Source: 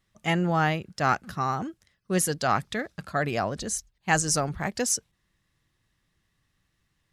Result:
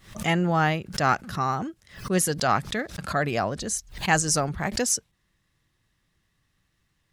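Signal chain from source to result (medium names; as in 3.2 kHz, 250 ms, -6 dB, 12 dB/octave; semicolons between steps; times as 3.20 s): swell ahead of each attack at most 130 dB/s; trim +1.5 dB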